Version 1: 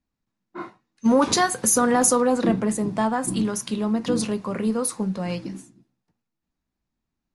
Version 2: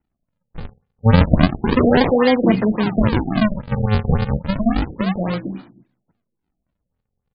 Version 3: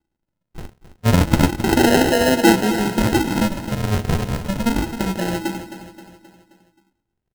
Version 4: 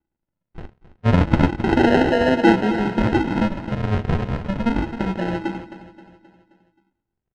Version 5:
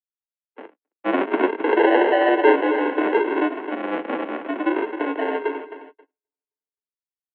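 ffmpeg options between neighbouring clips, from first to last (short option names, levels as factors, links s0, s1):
-af "aresample=16000,acrusher=samples=28:mix=1:aa=0.000001:lfo=1:lforange=44.8:lforate=0.31,aresample=44100,afftfilt=real='re*lt(b*sr/1024,730*pow(5100/730,0.5+0.5*sin(2*PI*3.6*pts/sr)))':imag='im*lt(b*sr/1024,730*pow(5100/730,0.5+0.5*sin(2*PI*3.6*pts/sr)))':win_size=1024:overlap=0.75,volume=2"
-filter_complex "[0:a]equalizer=f=340:t=o:w=0.33:g=13,acrusher=samples=38:mix=1:aa=0.000001,asplit=2[s0][s1];[s1]aecho=0:1:264|528|792|1056|1320:0.251|0.128|0.0653|0.0333|0.017[s2];[s0][s2]amix=inputs=2:normalize=0,volume=0.668"
-filter_complex "[0:a]asplit=2[s0][s1];[s1]aeval=exprs='val(0)*gte(abs(val(0)),0.0422)':c=same,volume=0.355[s2];[s0][s2]amix=inputs=2:normalize=0,lowpass=2600,volume=0.668"
-filter_complex "[0:a]agate=range=0.00501:threshold=0.00891:ratio=16:detection=peak,asplit=2[s0][s1];[s1]volume=9.44,asoftclip=hard,volume=0.106,volume=0.596[s2];[s0][s2]amix=inputs=2:normalize=0,highpass=f=210:t=q:w=0.5412,highpass=f=210:t=q:w=1.307,lowpass=f=2900:t=q:w=0.5176,lowpass=f=2900:t=q:w=0.7071,lowpass=f=2900:t=q:w=1.932,afreqshift=92,volume=0.794"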